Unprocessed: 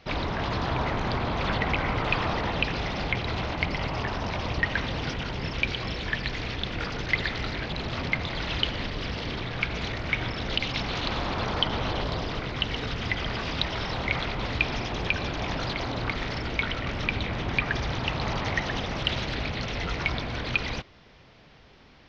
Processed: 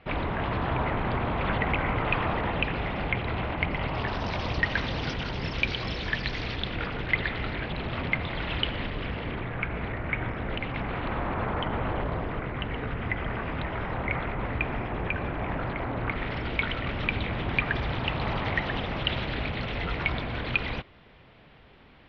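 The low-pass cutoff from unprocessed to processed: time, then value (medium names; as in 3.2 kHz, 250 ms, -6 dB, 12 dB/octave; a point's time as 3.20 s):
low-pass 24 dB/octave
3.75 s 2.9 kHz
4.28 s 5.6 kHz
6.40 s 5.6 kHz
6.92 s 3.2 kHz
8.87 s 3.2 kHz
9.59 s 2.2 kHz
15.93 s 2.2 kHz
16.47 s 3.5 kHz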